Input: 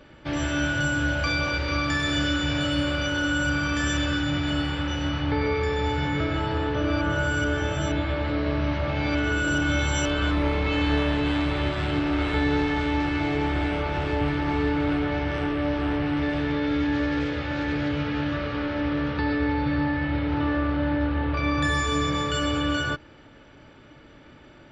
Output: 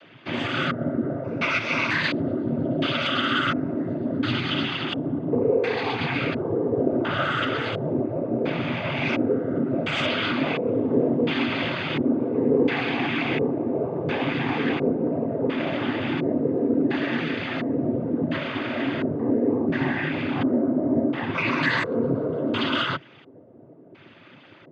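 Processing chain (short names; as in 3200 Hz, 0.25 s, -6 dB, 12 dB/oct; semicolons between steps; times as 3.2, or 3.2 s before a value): LFO low-pass square 0.71 Hz 470–2800 Hz; noise vocoder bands 16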